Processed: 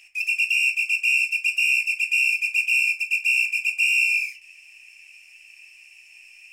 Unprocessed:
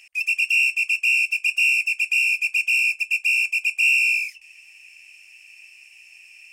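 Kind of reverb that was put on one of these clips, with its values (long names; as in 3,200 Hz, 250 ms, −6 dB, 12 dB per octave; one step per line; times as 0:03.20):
rectangular room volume 210 cubic metres, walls furnished, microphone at 1 metre
level −2 dB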